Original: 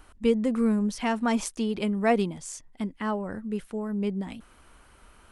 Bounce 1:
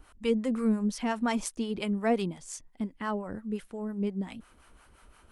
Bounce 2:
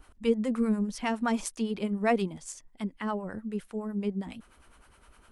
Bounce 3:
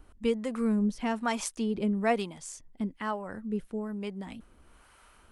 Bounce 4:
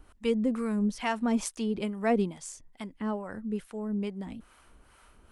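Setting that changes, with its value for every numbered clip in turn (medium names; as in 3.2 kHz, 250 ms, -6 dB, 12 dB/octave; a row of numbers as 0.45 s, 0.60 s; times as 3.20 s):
harmonic tremolo, rate: 5.7 Hz, 9.8 Hz, 1.1 Hz, 2.3 Hz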